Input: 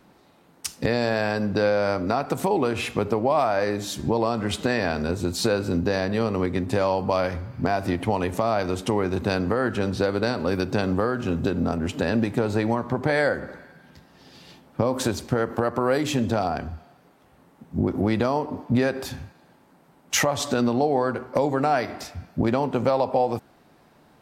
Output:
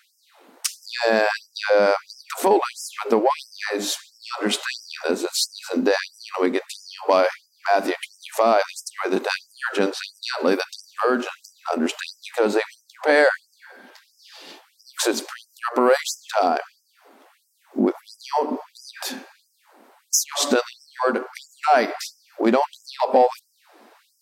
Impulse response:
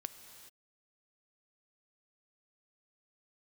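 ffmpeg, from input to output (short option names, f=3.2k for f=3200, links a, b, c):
-af "acontrast=79,afftfilt=real='re*gte(b*sr/1024,200*pow(5000/200,0.5+0.5*sin(2*PI*1.5*pts/sr)))':imag='im*gte(b*sr/1024,200*pow(5000/200,0.5+0.5*sin(2*PI*1.5*pts/sr)))':win_size=1024:overlap=0.75"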